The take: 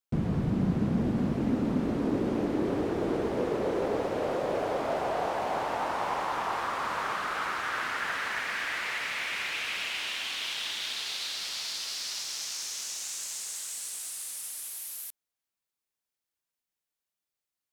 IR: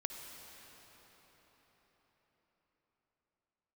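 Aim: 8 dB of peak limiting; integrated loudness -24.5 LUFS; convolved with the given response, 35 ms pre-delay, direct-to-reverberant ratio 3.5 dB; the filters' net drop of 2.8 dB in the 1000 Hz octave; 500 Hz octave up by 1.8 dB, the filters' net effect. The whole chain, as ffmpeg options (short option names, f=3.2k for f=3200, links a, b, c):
-filter_complex "[0:a]equalizer=f=500:t=o:g=3.5,equalizer=f=1k:t=o:g=-5,alimiter=limit=-23.5dB:level=0:latency=1,asplit=2[a][b];[1:a]atrim=start_sample=2205,adelay=35[c];[b][c]afir=irnorm=-1:irlink=0,volume=-3dB[d];[a][d]amix=inputs=2:normalize=0,volume=6.5dB"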